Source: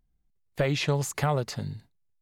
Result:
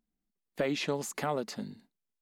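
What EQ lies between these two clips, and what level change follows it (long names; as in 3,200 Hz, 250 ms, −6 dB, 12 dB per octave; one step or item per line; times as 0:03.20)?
low shelf with overshoot 160 Hz −11 dB, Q 3
−5.0 dB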